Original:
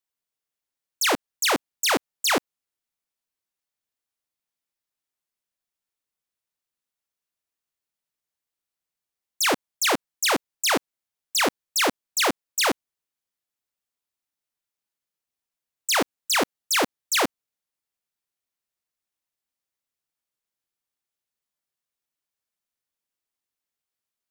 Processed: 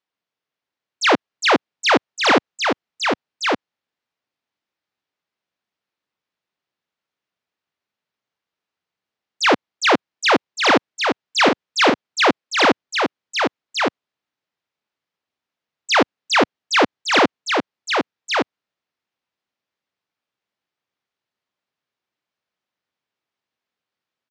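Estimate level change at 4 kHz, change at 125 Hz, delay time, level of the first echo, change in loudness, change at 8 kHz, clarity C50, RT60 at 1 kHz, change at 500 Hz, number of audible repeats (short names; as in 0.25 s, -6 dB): +5.0 dB, +8.5 dB, 1.165 s, -4.5 dB, +4.5 dB, -4.5 dB, none, none, +9.5 dB, 1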